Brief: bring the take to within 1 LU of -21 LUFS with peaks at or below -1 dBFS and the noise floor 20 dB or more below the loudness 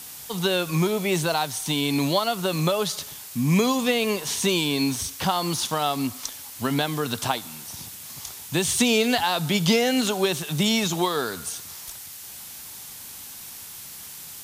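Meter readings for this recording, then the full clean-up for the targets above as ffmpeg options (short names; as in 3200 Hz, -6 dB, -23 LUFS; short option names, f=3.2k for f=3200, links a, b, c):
noise floor -40 dBFS; noise floor target -44 dBFS; loudness -24.0 LUFS; peak -5.5 dBFS; loudness target -21.0 LUFS
-> -af "afftdn=nr=6:nf=-40"
-af "volume=3dB"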